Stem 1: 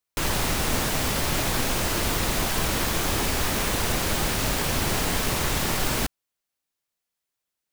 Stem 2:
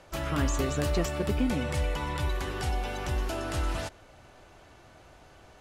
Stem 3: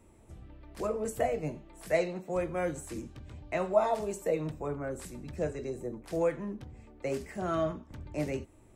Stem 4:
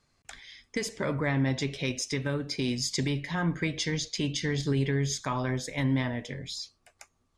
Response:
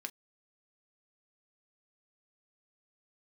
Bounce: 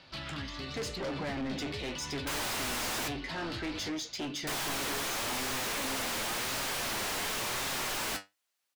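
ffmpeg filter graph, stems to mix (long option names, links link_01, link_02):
-filter_complex "[0:a]adelay=2100,volume=-12.5dB,asplit=3[link_01][link_02][link_03];[link_01]atrim=end=3.08,asetpts=PTS-STARTPTS,afade=type=out:start_time=3.076:duration=0.004:curve=hsin[link_04];[link_02]atrim=start=3.08:end=4.47,asetpts=PTS-STARTPTS,volume=0[link_05];[link_03]atrim=start=4.47,asetpts=PTS-STARTPTS,afade=type=in:duration=0.004:curve=hsin[link_06];[link_04][link_05][link_06]concat=n=3:v=0:a=1[link_07];[1:a]firequalizer=gain_entry='entry(180,0);entry(430,-17);entry(4500,0);entry(7000,-29)':delay=0.05:min_phase=1,acompressor=threshold=-39dB:ratio=2,volume=-5.5dB[link_08];[3:a]equalizer=frequency=310:width_type=o:width=1.5:gain=10.5,aeval=exprs='clip(val(0),-1,0.0668)':channel_layout=same,flanger=delay=9.1:depth=5.8:regen=62:speed=0.99:shape=sinusoidal,volume=-13.5dB[link_09];[link_07][link_08][link_09]amix=inputs=3:normalize=0,flanger=delay=7.2:depth=3.1:regen=70:speed=0.91:shape=triangular,asplit=2[link_10][link_11];[link_11]highpass=frequency=720:poles=1,volume=28dB,asoftclip=type=tanh:threshold=-26.5dB[link_12];[link_10][link_12]amix=inputs=2:normalize=0,lowpass=frequency=7700:poles=1,volume=-6dB"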